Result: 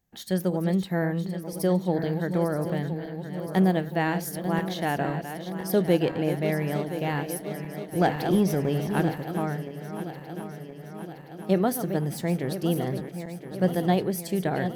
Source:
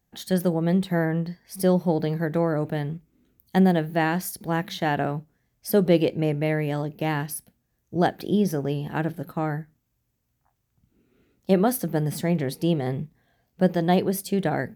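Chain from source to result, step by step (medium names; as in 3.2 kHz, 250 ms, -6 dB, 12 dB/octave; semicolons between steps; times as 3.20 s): backward echo that repeats 510 ms, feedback 78%, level -10 dB; 8.01–9.16 s: waveshaping leveller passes 1; trim -3 dB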